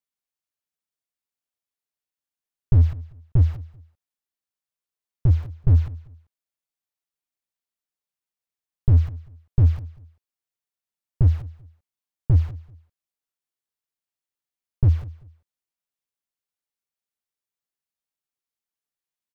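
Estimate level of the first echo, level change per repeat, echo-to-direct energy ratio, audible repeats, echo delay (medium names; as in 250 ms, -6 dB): -20.0 dB, -11.5 dB, -19.5 dB, 2, 194 ms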